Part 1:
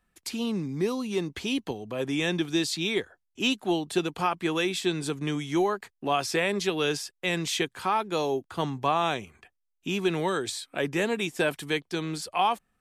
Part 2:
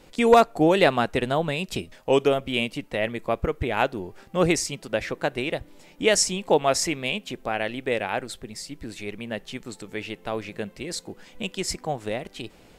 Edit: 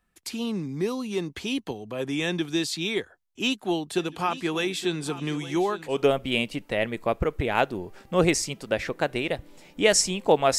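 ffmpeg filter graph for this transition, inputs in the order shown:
ffmpeg -i cue0.wav -i cue1.wav -filter_complex "[0:a]asplit=3[link_01][link_02][link_03];[link_01]afade=type=out:start_time=3.98:duration=0.02[link_04];[link_02]aecho=1:1:867|1734|2601|3468:0.178|0.0818|0.0376|0.0173,afade=type=in:start_time=3.98:duration=0.02,afade=type=out:start_time=6.05:duration=0.02[link_05];[link_03]afade=type=in:start_time=6.05:duration=0.02[link_06];[link_04][link_05][link_06]amix=inputs=3:normalize=0,apad=whole_dur=10.58,atrim=end=10.58,atrim=end=6.05,asetpts=PTS-STARTPTS[link_07];[1:a]atrim=start=2.07:end=6.8,asetpts=PTS-STARTPTS[link_08];[link_07][link_08]acrossfade=duration=0.2:curve1=tri:curve2=tri" out.wav

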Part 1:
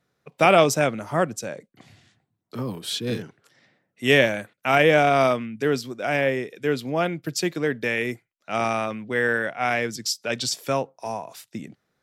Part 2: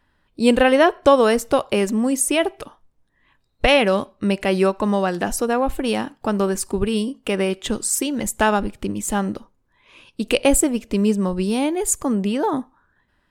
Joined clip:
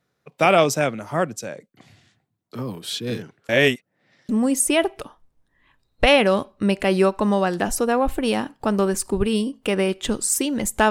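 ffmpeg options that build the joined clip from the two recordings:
ffmpeg -i cue0.wav -i cue1.wav -filter_complex "[0:a]apad=whole_dur=10.9,atrim=end=10.9,asplit=2[link_01][link_02];[link_01]atrim=end=3.492[link_03];[link_02]atrim=start=3.488:end=4.292,asetpts=PTS-STARTPTS,areverse[link_04];[1:a]atrim=start=1.898:end=8.51[link_05];[link_03][link_04]acrossfade=duration=0.004:curve1=hsin:curve2=hsin[link_06];[link_06][link_05]acrossfade=duration=0.004:curve1=hsin:curve2=hsin" out.wav

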